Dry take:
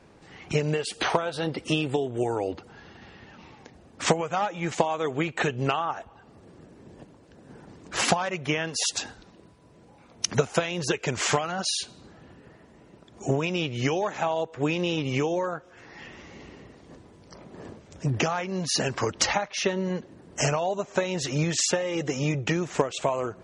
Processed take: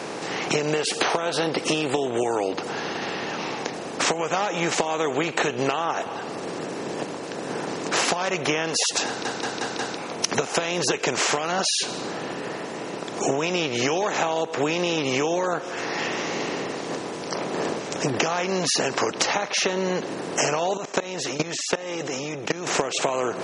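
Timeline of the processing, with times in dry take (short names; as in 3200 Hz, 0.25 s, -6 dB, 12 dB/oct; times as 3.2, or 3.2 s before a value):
9.07 stutter in place 0.18 s, 5 plays
20.77–22.67 level quantiser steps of 23 dB
whole clip: per-bin compression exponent 0.6; HPF 230 Hz 12 dB/oct; compressor, threshold -26 dBFS; gain +6 dB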